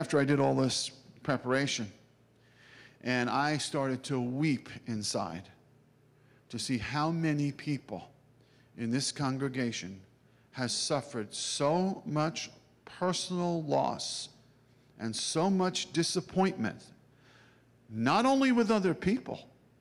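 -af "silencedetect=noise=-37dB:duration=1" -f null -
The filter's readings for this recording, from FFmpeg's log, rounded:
silence_start: 1.86
silence_end: 3.04 | silence_duration: 1.18
silence_start: 5.40
silence_end: 6.51 | silence_duration: 1.11
silence_start: 16.71
silence_end: 17.93 | silence_duration: 1.22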